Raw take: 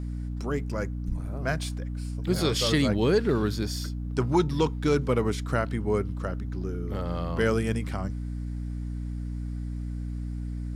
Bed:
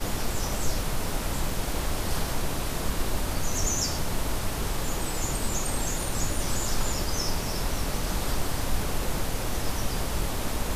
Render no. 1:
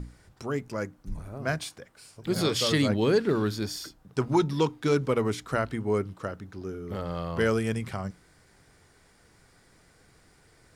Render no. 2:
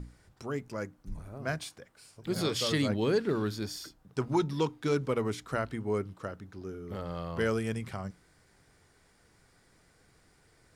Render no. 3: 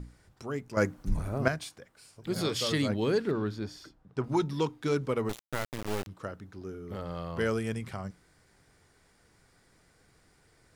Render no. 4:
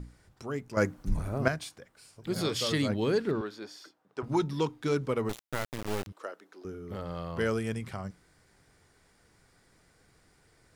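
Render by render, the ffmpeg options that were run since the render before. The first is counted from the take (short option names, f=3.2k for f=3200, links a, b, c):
-af "bandreject=f=60:t=h:w=6,bandreject=f=120:t=h:w=6,bandreject=f=180:t=h:w=6,bandreject=f=240:t=h:w=6,bandreject=f=300:t=h:w=6"
-af "volume=-4.5dB"
-filter_complex "[0:a]asettb=1/sr,asplit=3[a][b][c];[a]atrim=end=3.314[d];[b]atrim=start=3.31:end=4.24,asetpts=PTS-STARTPTS,afade=t=in:d=0.004:c=qsin,afade=t=out:st=0.926:d=0.004:c=qsin,aemphasis=mode=reproduction:type=75kf[e];[c]atrim=start=4.236[f];[d][e]acrossfade=d=0.004:c1=hsin:c2=qsin[g];[g][f]acrossfade=d=0.004:c1=qsin:c2=hsin,asettb=1/sr,asplit=3[h][i][j];[h]atrim=end=5.294[k];[i]atrim=start=5.29:end=6.07,asetpts=PTS-STARTPTS,afade=t=in:d=0.004:c=qsin,afade=t=out:st=0.776:d=0.004:c=qsin,acrusher=bits=3:dc=4:mix=0:aa=0.000001[l];[j]atrim=start=6.066[m];[k][l]acrossfade=d=0.004:c1=hsin:c2=qsin[n];[n][m]acrossfade=d=0.004:c1=qsin:c2=hsin,asplit=3[o][p][q];[o]atrim=end=0.772[r];[p]atrim=start=0.768:end=1.482,asetpts=PTS-STARTPTS,volume=11dB[s];[q]atrim=start=1.478[t];[r][s]acrossfade=d=0.004:c1=hsin:c2=hsin[u];[u][t]acrossfade=d=0.004:c1=hsin:c2=hsin"
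-filter_complex "[0:a]asettb=1/sr,asplit=3[a][b][c];[a]atrim=end=3.414[d];[b]atrim=start=3.41:end=4.23,asetpts=PTS-STARTPTS,afade=t=in:d=0.004:c=qsin,afade=t=out:st=0.816:d=0.004:c=qsin,highpass=400[e];[c]atrim=start=4.226[f];[d][e]acrossfade=d=0.004:c1=hsin:c2=qsin[g];[g][f]acrossfade=d=0.004:c1=qsin:c2=hsin,asettb=1/sr,asplit=3[h][i][j];[h]atrim=end=6.124[k];[i]atrim=start=6.12:end=6.65,asetpts=PTS-STARTPTS,afade=t=in:d=0.004:c=qsin,afade=t=out:st=0.526:d=0.004:c=qsin,highpass=f=350:w=0.5412,highpass=f=350:w=1.3066[l];[j]atrim=start=6.646[m];[k][l]acrossfade=d=0.004:c1=hsin:c2=qsin[n];[n][m]acrossfade=d=0.004:c1=qsin:c2=hsin"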